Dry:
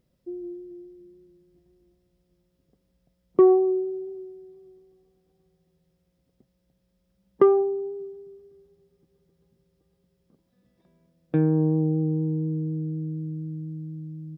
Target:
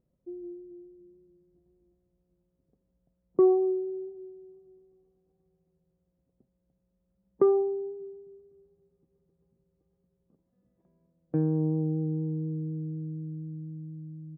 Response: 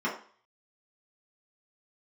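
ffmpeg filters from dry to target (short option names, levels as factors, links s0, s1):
-filter_complex "[0:a]lowpass=1000,asplit=2[s0][s1];[1:a]atrim=start_sample=2205,adelay=31[s2];[s1][s2]afir=irnorm=-1:irlink=0,volume=0.0266[s3];[s0][s3]amix=inputs=2:normalize=0,volume=0.562"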